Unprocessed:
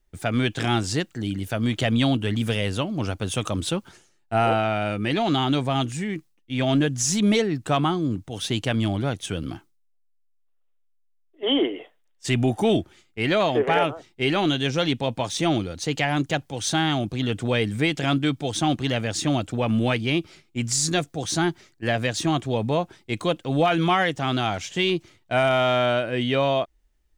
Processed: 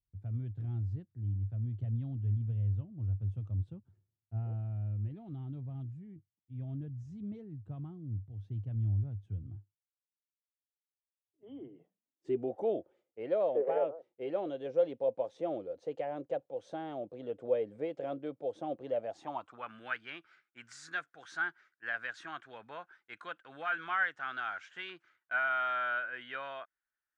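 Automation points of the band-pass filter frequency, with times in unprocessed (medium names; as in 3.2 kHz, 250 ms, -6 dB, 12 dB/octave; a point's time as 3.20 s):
band-pass filter, Q 6.9
11.52 s 100 Hz
12.53 s 530 Hz
18.91 s 530 Hz
19.72 s 1.5 kHz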